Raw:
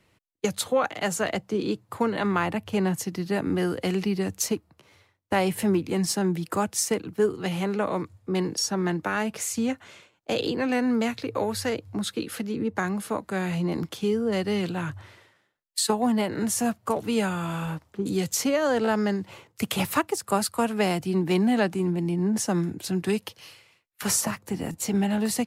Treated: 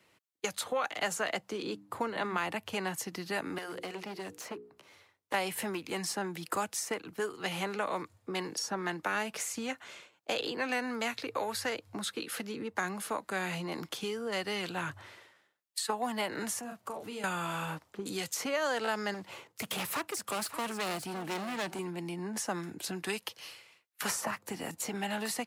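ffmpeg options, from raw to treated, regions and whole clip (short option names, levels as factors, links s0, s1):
-filter_complex "[0:a]asettb=1/sr,asplit=3[s0][s1][s2];[s0]atrim=end=1.624[s3];[s1]atrim=start=1.62:end=2.38,asetpts=PTS-STARTPTS,afade=t=in:d=0.004:c=qsin,afade=t=out:st=0.756:d=0.004:c=qsin,tiltshelf=f=690:g=4.5,bandreject=f=50:t=h:w=6,bandreject=f=100:t=h:w=6,bandreject=f=150:t=h:w=6,bandreject=f=200:t=h:w=6,bandreject=f=250:t=h:w=6,bandreject=f=300:t=h:w=6[s4];[s2]atrim=start=2.376[s5];[s3][s4]acrossfade=d=0.004:c1=hsin:c2=qsin[s6];[s6][s5]acrossfade=d=0.004:c1=qsin:c2=hsin,asettb=1/sr,asplit=3[s7][s8][s9];[s7]atrim=end=3.584[s10];[s8]atrim=start=3.58:end=5.34,asetpts=PTS-STARTPTS,afade=t=in:d=0.004:c=qsin,afade=t=out:st=1.756:d=0.004:c=qsin,bandreject=f=60:t=h:w=6,bandreject=f=120:t=h:w=6,bandreject=f=180:t=h:w=6,bandreject=f=240:t=h:w=6,bandreject=f=300:t=h:w=6,bandreject=f=360:t=h:w=6,bandreject=f=420:t=h:w=6,bandreject=f=480:t=h:w=6,asoftclip=type=hard:threshold=0.0562,acrossover=split=310|2400[s11][s12][s13];[s11]acompressor=threshold=0.00631:ratio=4[s14];[s12]acompressor=threshold=0.0141:ratio=4[s15];[s13]acompressor=threshold=0.00316:ratio=4[s16];[s14][s15][s16]amix=inputs=3:normalize=0[s17];[s9]atrim=start=5.336[s18];[s10][s17]acrossfade=d=0.004:c1=hsin:c2=qsin[s19];[s19][s18]acrossfade=d=0.004:c1=qsin:c2=hsin,asettb=1/sr,asplit=3[s20][s21][s22];[s20]atrim=end=16.594[s23];[s21]atrim=start=16.59:end=17.24,asetpts=PTS-STARTPTS,afade=t=in:d=0.004:c=qsin,afade=t=out:st=0.646:d=0.004:c=qsin,asplit=2[s24][s25];[s25]adelay=37,volume=0.501[s26];[s24][s26]amix=inputs=2:normalize=0,atrim=end_sample=28665,acompressor=threshold=0.0126:ratio=3:attack=3.2:release=140:knee=1:detection=peak[s27];[s22]atrim=start=17.236[s28];[s23][s27]acrossfade=d=0.004:c1=hsin:c2=qsin[s29];[s29][s28]acrossfade=d=0.004:c1=qsin:c2=hsin,asettb=1/sr,asplit=3[s30][s31][s32];[s30]atrim=end=19.144[s33];[s31]atrim=start=19.14:end=21.79,asetpts=PTS-STARTPTS,afade=t=in:d=0.004:c=qsin,afade=t=out:st=2.646:d=0.004:c=qsin,volume=23.7,asoftclip=hard,volume=0.0422,aecho=1:1:568:0.188,atrim=end_sample=116865[s34];[s32]atrim=start=21.786[s35];[s33][s34]acrossfade=d=0.004:c1=hsin:c2=qsin[s36];[s36][s35]acrossfade=d=0.004:c1=qsin:c2=hsin,highpass=f=370:p=1,acrossover=split=720|2300[s37][s38][s39];[s37]acompressor=threshold=0.0126:ratio=4[s40];[s38]acompressor=threshold=0.0251:ratio=4[s41];[s39]acompressor=threshold=0.0158:ratio=4[s42];[s40][s41][s42]amix=inputs=3:normalize=0"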